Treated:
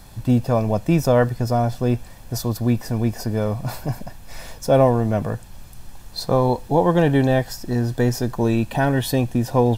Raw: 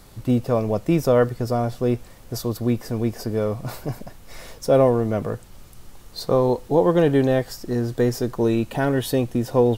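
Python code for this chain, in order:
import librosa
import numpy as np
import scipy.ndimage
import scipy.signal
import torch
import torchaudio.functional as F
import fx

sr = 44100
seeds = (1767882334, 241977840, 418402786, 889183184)

y = x + 0.44 * np.pad(x, (int(1.2 * sr / 1000.0), 0))[:len(x)]
y = y * 10.0 ** (2.0 / 20.0)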